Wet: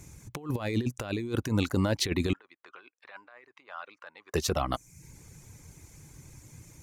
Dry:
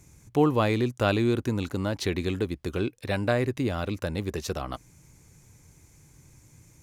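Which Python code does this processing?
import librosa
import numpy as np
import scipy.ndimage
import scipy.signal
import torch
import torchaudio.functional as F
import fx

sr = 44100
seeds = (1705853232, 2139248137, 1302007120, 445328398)

y = fx.dereverb_blind(x, sr, rt60_s=0.52)
y = fx.over_compress(y, sr, threshold_db=-29.0, ratio=-0.5)
y = fx.ladder_bandpass(y, sr, hz=1400.0, resonance_pct=35, at=(2.33, 4.34))
y = y * 10.0 ** (2.0 / 20.0)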